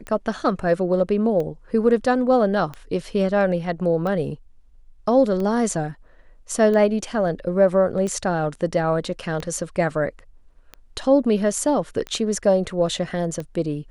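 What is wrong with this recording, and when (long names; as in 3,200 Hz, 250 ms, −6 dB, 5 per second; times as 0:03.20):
scratch tick 45 rpm −18 dBFS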